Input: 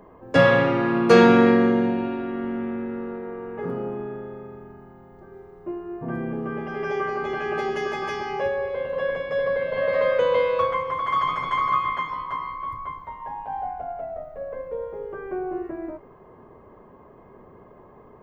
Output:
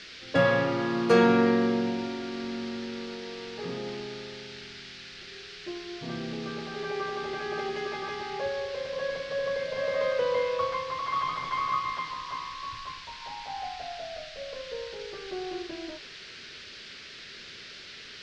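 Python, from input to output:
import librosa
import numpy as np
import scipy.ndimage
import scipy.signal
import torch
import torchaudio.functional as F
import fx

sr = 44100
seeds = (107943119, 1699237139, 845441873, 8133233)

y = fx.env_lowpass(x, sr, base_hz=500.0, full_db=-20.5)
y = fx.dmg_noise_band(y, sr, seeds[0], low_hz=1400.0, high_hz=5000.0, level_db=-39.0)
y = F.gain(torch.from_numpy(y), -6.5).numpy()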